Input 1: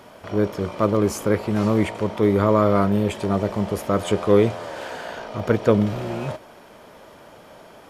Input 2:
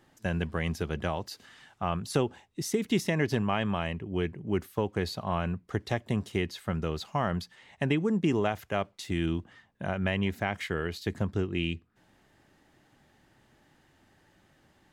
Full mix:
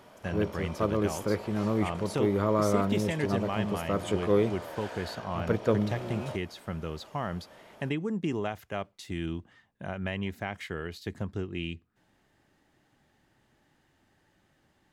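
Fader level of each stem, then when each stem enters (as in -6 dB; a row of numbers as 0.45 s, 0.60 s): -8.5 dB, -4.5 dB; 0.00 s, 0.00 s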